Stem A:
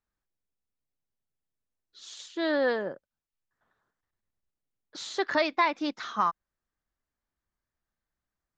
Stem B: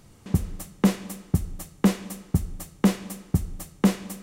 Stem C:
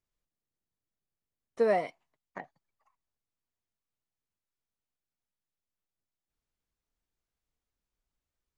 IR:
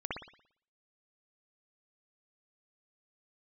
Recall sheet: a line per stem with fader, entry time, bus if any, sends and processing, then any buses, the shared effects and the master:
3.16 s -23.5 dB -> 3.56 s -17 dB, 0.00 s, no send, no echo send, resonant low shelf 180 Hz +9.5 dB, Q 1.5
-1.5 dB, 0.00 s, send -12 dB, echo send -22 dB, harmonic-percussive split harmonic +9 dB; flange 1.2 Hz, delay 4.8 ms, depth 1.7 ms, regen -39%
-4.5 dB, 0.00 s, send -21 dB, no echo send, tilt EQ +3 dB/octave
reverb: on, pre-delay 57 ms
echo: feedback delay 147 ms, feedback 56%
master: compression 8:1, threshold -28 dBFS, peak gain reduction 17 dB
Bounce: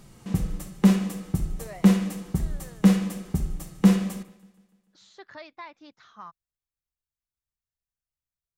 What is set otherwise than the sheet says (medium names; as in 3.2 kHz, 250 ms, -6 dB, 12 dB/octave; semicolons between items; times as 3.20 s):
stem C -4.5 dB -> -14.5 dB; master: missing compression 8:1, threshold -28 dBFS, peak gain reduction 17 dB